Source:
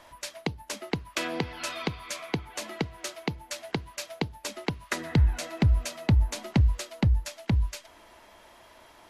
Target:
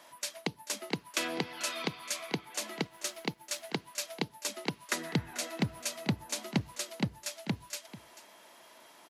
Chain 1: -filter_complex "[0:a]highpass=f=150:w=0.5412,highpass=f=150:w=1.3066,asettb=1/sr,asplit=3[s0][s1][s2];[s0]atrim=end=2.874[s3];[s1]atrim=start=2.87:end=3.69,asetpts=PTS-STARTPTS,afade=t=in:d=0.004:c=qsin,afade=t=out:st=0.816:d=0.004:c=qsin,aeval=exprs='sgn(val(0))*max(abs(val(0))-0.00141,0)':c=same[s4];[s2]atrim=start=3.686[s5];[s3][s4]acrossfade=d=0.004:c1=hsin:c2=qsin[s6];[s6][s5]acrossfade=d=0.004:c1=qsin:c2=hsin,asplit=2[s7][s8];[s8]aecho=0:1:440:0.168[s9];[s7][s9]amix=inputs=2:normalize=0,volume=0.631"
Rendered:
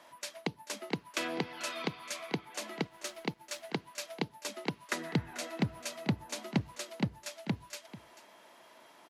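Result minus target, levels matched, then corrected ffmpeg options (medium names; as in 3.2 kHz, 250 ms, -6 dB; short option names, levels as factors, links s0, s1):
8 kHz band -4.5 dB
-filter_complex "[0:a]highpass=f=150:w=0.5412,highpass=f=150:w=1.3066,highshelf=f=4100:g=8,asettb=1/sr,asplit=3[s0][s1][s2];[s0]atrim=end=2.874[s3];[s1]atrim=start=2.87:end=3.69,asetpts=PTS-STARTPTS,afade=t=in:d=0.004:c=qsin,afade=t=out:st=0.816:d=0.004:c=qsin,aeval=exprs='sgn(val(0))*max(abs(val(0))-0.00141,0)':c=same[s4];[s2]atrim=start=3.686[s5];[s3][s4]acrossfade=d=0.004:c1=hsin:c2=qsin[s6];[s6][s5]acrossfade=d=0.004:c1=qsin:c2=hsin,asplit=2[s7][s8];[s8]aecho=0:1:440:0.168[s9];[s7][s9]amix=inputs=2:normalize=0,volume=0.631"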